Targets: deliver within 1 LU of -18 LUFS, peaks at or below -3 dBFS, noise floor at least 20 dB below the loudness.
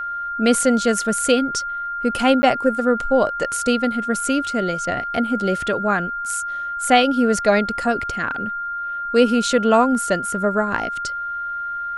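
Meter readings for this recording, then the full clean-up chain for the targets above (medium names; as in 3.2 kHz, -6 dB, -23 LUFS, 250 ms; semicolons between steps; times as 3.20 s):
dropouts 1; longest dropout 10 ms; steady tone 1.4 kHz; tone level -24 dBFS; loudness -20.0 LUFS; peak level -1.0 dBFS; loudness target -18.0 LUFS
-> interpolate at 2.42 s, 10 ms; band-stop 1.4 kHz, Q 30; trim +2 dB; peak limiter -3 dBFS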